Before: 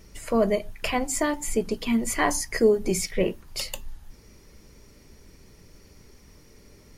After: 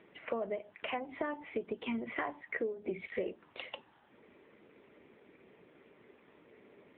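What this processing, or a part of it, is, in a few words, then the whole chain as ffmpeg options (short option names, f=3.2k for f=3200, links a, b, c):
voicemail: -af "highpass=320,lowpass=2.8k,acompressor=threshold=-32dB:ratio=10" -ar 8000 -c:a libopencore_amrnb -b:a 7950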